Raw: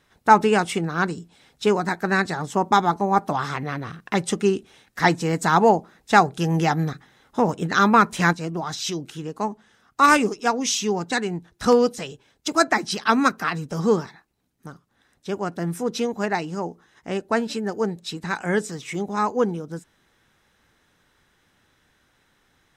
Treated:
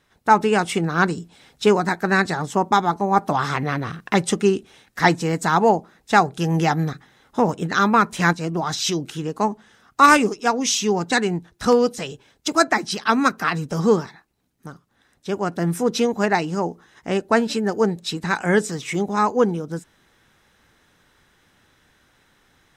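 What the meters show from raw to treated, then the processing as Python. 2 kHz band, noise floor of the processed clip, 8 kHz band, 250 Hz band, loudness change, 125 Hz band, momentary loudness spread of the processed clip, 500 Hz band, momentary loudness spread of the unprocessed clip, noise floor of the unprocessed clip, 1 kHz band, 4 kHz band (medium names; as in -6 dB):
+2.0 dB, -63 dBFS, +2.5 dB, +2.0 dB, +2.0 dB, +2.5 dB, 10 LU, +2.0 dB, 15 LU, -65 dBFS, +1.0 dB, +2.5 dB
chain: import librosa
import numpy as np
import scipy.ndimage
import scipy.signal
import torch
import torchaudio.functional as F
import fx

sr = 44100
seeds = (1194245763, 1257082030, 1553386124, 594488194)

y = fx.rider(x, sr, range_db=3, speed_s=0.5)
y = F.gain(torch.from_numpy(y), 2.0).numpy()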